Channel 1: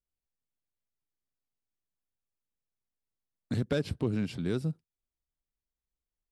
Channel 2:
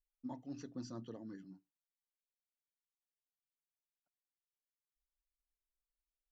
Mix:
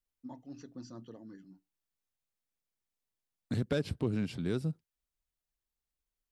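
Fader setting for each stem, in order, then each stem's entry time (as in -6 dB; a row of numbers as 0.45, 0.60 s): -2.0, -1.0 dB; 0.00, 0.00 s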